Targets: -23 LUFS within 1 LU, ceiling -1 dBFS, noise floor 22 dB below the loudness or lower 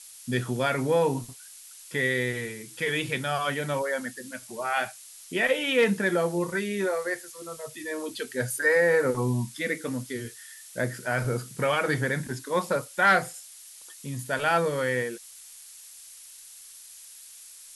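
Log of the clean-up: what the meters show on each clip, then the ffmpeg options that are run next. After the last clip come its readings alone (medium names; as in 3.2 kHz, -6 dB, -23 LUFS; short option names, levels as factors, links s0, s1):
noise floor -48 dBFS; noise floor target -49 dBFS; loudness -27.0 LUFS; peak level -11.5 dBFS; loudness target -23.0 LUFS
-> -af "afftdn=nr=6:nf=-48"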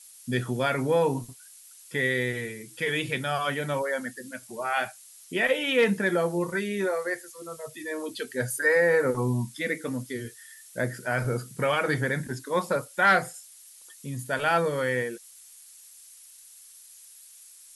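noise floor -51 dBFS; loudness -27.0 LUFS; peak level -11.5 dBFS; loudness target -23.0 LUFS
-> -af "volume=1.58"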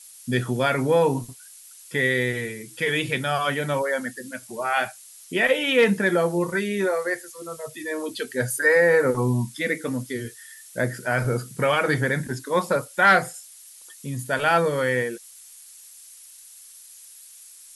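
loudness -23.0 LUFS; peak level -7.5 dBFS; noise floor -47 dBFS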